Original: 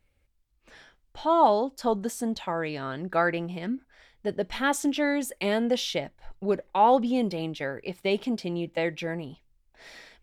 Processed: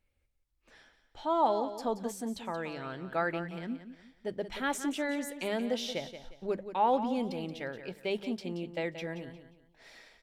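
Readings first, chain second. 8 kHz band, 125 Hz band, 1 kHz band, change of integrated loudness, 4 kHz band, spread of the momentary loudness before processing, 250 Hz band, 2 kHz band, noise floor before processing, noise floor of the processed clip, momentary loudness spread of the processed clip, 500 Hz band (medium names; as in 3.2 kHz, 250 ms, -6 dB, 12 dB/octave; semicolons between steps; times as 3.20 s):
-6.5 dB, -7.0 dB, -6.5 dB, -6.5 dB, -6.5 dB, 12 LU, -7.0 dB, -6.5 dB, -69 dBFS, -74 dBFS, 12 LU, -6.5 dB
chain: hum notches 50/100/150/200 Hz; feedback delay 178 ms, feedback 32%, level -11 dB; trim -7 dB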